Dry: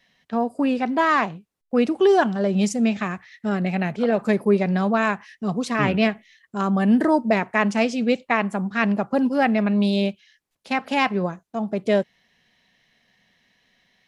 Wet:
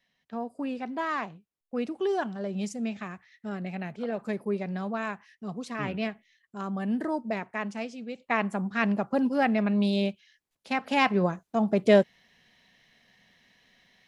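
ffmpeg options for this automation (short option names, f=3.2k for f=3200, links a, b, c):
-af "volume=7.5dB,afade=t=out:st=7.46:d=0.68:silence=0.473151,afade=t=in:st=8.14:d=0.22:silence=0.223872,afade=t=in:st=10.8:d=0.66:silence=0.501187"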